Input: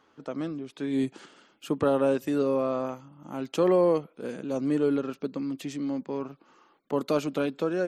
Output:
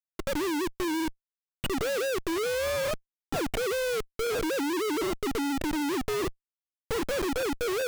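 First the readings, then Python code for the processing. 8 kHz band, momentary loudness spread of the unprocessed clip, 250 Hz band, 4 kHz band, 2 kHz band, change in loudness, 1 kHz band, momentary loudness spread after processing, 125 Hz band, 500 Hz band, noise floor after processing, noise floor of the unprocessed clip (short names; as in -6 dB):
n/a, 13 LU, -3.0 dB, +9.5 dB, +9.0 dB, -1.5 dB, +1.0 dB, 5 LU, -4.5 dB, -2.5 dB, under -85 dBFS, -65 dBFS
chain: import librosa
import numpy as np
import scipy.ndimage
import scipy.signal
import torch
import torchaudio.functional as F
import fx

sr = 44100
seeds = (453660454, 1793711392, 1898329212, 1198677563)

y = fx.sine_speech(x, sr)
y = fx.schmitt(y, sr, flips_db=-42.5)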